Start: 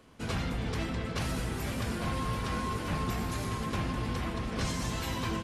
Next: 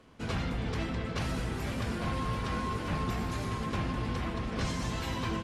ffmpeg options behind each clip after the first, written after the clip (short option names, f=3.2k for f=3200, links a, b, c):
-af "highshelf=f=9.1k:g=-12"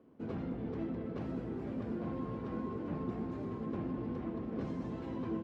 -af "bandpass=f=310:t=q:w=1.4:csg=0,volume=1dB"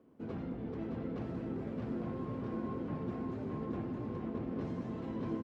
-af "aecho=1:1:617:0.668,volume=-1.5dB"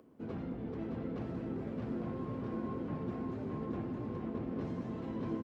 -af "acompressor=mode=upward:threshold=-57dB:ratio=2.5"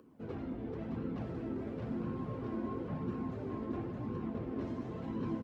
-af "flanger=delay=0.7:depth=2.5:regen=-42:speed=0.96:shape=sinusoidal,volume=4dB"